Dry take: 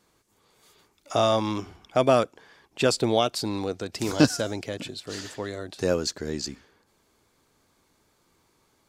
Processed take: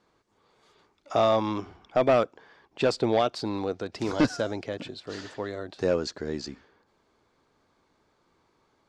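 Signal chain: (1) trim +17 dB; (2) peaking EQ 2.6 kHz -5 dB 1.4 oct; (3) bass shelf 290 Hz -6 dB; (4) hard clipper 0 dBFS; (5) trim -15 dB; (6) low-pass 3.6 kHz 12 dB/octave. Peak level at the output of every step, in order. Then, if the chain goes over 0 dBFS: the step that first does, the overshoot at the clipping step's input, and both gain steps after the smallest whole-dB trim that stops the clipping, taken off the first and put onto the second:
+12.0 dBFS, +11.5 dBFS, +9.5 dBFS, 0.0 dBFS, -15.0 dBFS, -14.5 dBFS; step 1, 9.5 dB; step 1 +7 dB, step 5 -5 dB

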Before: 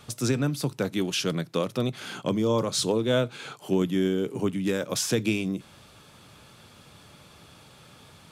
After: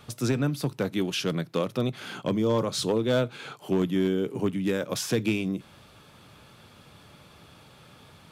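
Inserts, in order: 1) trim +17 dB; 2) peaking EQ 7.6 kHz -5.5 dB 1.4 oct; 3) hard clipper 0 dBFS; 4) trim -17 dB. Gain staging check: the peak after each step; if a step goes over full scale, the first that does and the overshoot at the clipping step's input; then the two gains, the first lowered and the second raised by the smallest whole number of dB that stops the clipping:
+3.5 dBFS, +3.5 dBFS, 0.0 dBFS, -17.0 dBFS; step 1, 3.5 dB; step 1 +13 dB, step 4 -13 dB

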